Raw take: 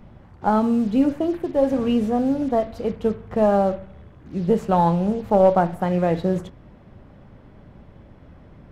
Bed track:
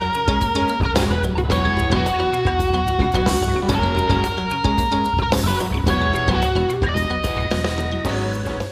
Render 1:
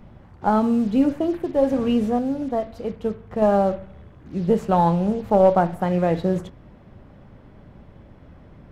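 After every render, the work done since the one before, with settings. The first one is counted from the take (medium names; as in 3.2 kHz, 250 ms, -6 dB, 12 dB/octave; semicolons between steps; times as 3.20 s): 2.19–3.42 s: gain -3.5 dB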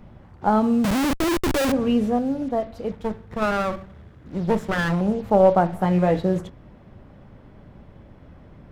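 0.84–1.72 s: Schmitt trigger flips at -31.5 dBFS; 2.91–5.01 s: comb filter that takes the minimum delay 0.54 ms; 5.73–6.19 s: doubling 16 ms -5 dB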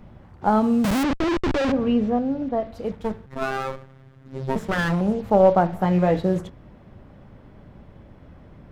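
1.03–2.65 s: distance through air 150 m; 3.26–4.56 s: robot voice 133 Hz; 5.31–6.17 s: peaking EQ 9.3 kHz -13.5 dB 0.23 oct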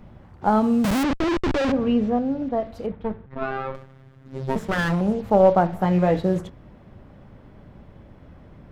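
2.86–3.75 s: distance through air 360 m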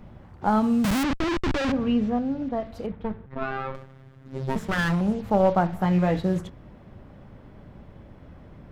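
dynamic bell 500 Hz, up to -6 dB, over -32 dBFS, Q 0.88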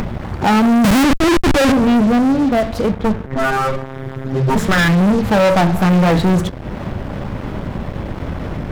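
upward compressor, threshold -34 dBFS; waveshaping leveller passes 5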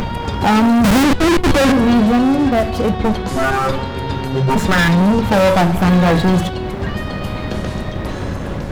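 add bed track -5.5 dB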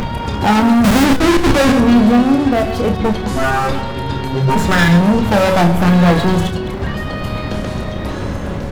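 chunks repeated in reverse 106 ms, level -10 dB; doubling 29 ms -8.5 dB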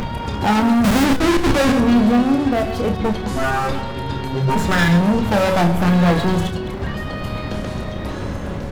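trim -4 dB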